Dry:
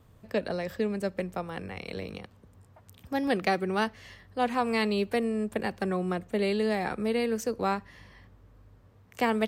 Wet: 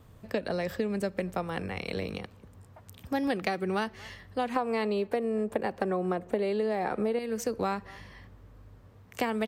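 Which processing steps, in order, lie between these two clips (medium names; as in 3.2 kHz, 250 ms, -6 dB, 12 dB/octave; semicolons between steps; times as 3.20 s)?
4.56–7.19 s: peaking EQ 590 Hz +10.5 dB 2.8 oct; speakerphone echo 230 ms, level -27 dB; compression 12:1, threshold -29 dBFS, peak gain reduction 17 dB; trim +3.5 dB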